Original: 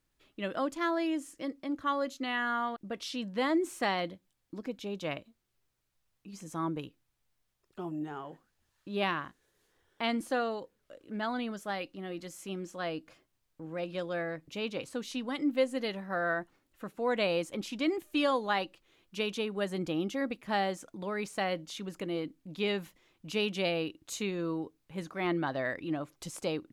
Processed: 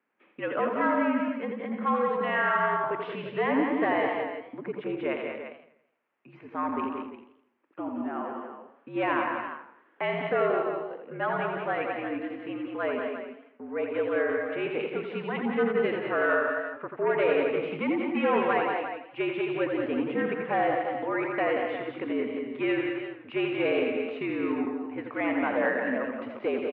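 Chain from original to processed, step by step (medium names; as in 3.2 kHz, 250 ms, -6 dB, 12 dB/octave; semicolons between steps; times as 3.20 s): sine folder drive 7 dB, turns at -16 dBFS; mistuned SSB -60 Hz 330–2500 Hz; on a send: multi-tap echo 85/181/207/348 ms -7/-6.5/-8.5/-10 dB; on the sum: modulated delay 83 ms, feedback 47%, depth 125 cents, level -10.5 dB; trim -4 dB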